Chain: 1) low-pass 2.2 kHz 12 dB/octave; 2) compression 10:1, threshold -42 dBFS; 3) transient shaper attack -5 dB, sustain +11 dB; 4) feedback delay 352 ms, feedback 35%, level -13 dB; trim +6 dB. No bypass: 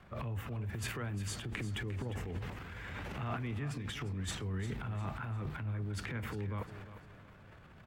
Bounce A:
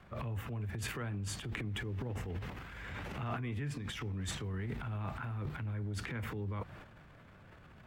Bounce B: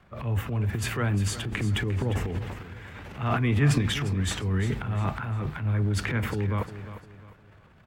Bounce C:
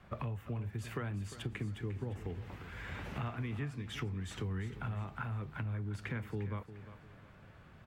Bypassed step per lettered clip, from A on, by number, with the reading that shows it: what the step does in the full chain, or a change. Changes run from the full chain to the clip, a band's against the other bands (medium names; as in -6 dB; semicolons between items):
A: 4, momentary loudness spread change +2 LU; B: 2, mean gain reduction 8.5 dB; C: 3, 8 kHz band -7.5 dB